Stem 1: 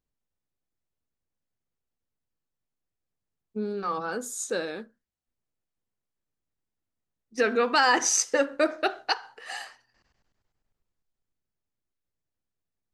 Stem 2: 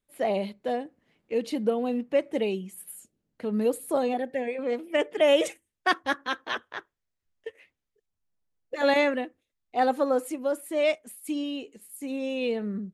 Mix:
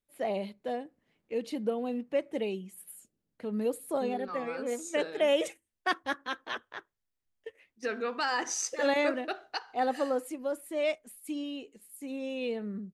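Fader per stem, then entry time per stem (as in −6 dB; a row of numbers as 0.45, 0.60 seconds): −9.5, −5.5 decibels; 0.45, 0.00 seconds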